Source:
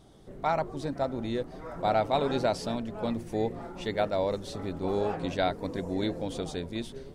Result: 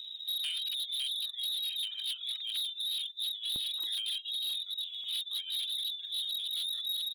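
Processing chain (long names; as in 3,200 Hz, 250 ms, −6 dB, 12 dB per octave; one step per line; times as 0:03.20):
spectral tilt −4.5 dB per octave
harmonic generator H 2 −25 dB, 3 −19 dB, 5 −15 dB, 7 −27 dB, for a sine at −6.5 dBFS
voice inversion scrambler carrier 3,800 Hz
double-tracking delay 46 ms −4 dB
repeating echo 200 ms, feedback 29%, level −9 dB
compressor whose output falls as the input rises −21 dBFS, ratio −0.5
reverb reduction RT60 1 s
hard clipping −23.5 dBFS, distortion −8 dB
high-pass filter 940 Hz 12 dB per octave, from 0:03.56 280 Hz, from 0:05.04 1,200 Hz
floating-point word with a short mantissa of 4 bits
reverb reduction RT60 0.61 s
level −7.5 dB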